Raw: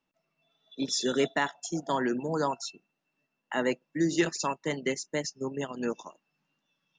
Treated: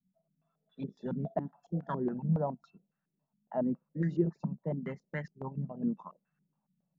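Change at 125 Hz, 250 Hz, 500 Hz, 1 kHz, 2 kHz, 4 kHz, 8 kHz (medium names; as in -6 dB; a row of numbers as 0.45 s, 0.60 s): +5.5 dB, -3.0 dB, -7.0 dB, -9.0 dB, -15.5 dB, under -30 dB, under -40 dB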